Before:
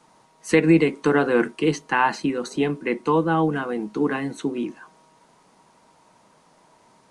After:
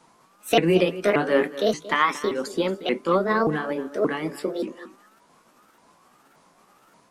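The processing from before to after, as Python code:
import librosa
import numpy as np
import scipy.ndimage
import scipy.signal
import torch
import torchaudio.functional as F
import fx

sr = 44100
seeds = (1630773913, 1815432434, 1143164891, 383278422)

y = fx.pitch_ramps(x, sr, semitones=6.5, every_ms=578)
y = y + 10.0 ** (-15.5 / 20.0) * np.pad(y, (int(229 * sr / 1000.0), 0))[:len(y)]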